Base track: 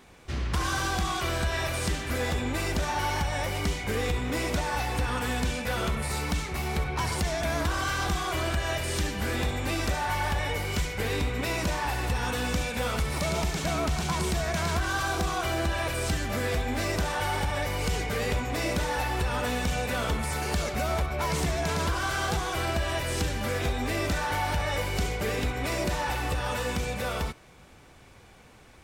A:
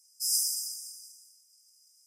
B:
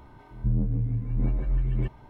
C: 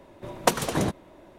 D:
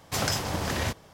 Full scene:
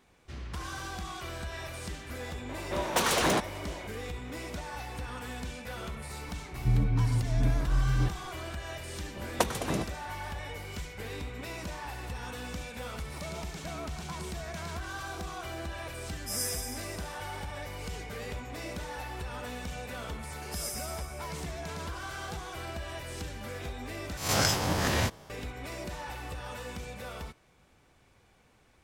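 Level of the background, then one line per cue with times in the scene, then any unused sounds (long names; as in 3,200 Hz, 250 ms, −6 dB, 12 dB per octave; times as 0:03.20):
base track −10.5 dB
0:02.49: mix in C −14.5 dB + mid-hump overdrive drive 33 dB, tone 7,700 Hz, clips at −2.5 dBFS
0:06.21: mix in B −2 dB + comb filter 6.9 ms, depth 59%
0:08.93: mix in C −6 dB
0:16.06: mix in A −6 dB
0:20.31: mix in A −10.5 dB
0:24.17: overwrite with D −0.5 dB + peak hold with a rise ahead of every peak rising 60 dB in 0.49 s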